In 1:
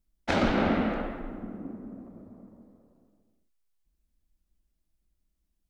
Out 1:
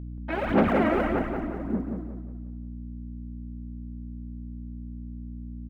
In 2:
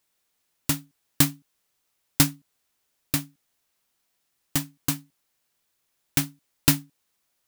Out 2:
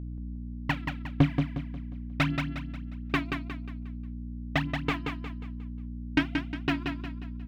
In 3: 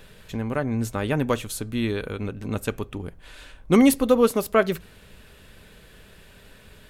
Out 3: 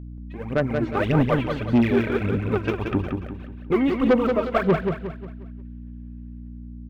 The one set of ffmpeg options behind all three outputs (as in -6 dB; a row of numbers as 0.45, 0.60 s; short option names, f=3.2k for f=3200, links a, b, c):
-af "highpass=f=130:p=1,bandreject=f=338:t=h:w=4,bandreject=f=676:t=h:w=4,bandreject=f=1.014k:t=h:w=4,bandreject=f=1.352k:t=h:w=4,bandreject=f=1.69k:t=h:w=4,bandreject=f=2.028k:t=h:w=4,bandreject=f=2.366k:t=h:w=4,bandreject=f=2.704k:t=h:w=4,bandreject=f=3.042k:t=h:w=4,bandreject=f=3.38k:t=h:w=4,bandreject=f=3.718k:t=h:w=4,bandreject=f=4.056k:t=h:w=4,bandreject=f=4.394k:t=h:w=4,bandreject=f=4.732k:t=h:w=4,bandreject=f=5.07k:t=h:w=4,agate=range=-32dB:threshold=-43dB:ratio=16:detection=peak,lowpass=f=2.7k:w=0.5412,lowpass=f=2.7k:w=1.3066,alimiter=limit=-16dB:level=0:latency=1:release=186,dynaudnorm=f=100:g=13:m=13dB,aphaser=in_gain=1:out_gain=1:delay=3.2:decay=0.77:speed=1.7:type=sinusoidal,aeval=exprs='val(0)+0.0447*(sin(2*PI*60*n/s)+sin(2*PI*2*60*n/s)/2+sin(2*PI*3*60*n/s)/3+sin(2*PI*4*60*n/s)/4+sin(2*PI*5*60*n/s)/5)':c=same,asoftclip=type=tanh:threshold=-4dB,aecho=1:1:179|358|537|716|895:0.531|0.212|0.0849|0.034|0.0136,volume=-8.5dB"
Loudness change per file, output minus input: -1.0, -6.5, +1.0 LU